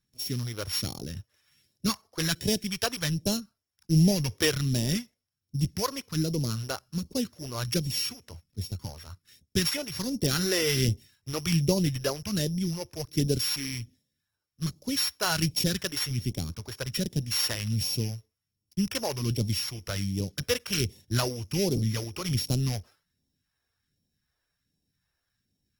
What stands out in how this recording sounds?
a buzz of ramps at a fixed pitch in blocks of 8 samples; phasing stages 2, 1.3 Hz, lowest notch 170–1400 Hz; Opus

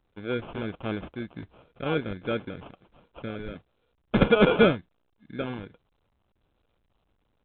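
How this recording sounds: phasing stages 4, 1.4 Hz, lowest notch 600–2100 Hz; aliases and images of a low sample rate 1.9 kHz, jitter 0%; A-law

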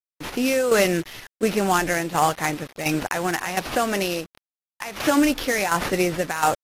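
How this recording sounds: a quantiser's noise floor 6-bit, dither none; tremolo saw down 1.4 Hz, depth 65%; aliases and images of a low sample rate 8.2 kHz, jitter 20%; AAC

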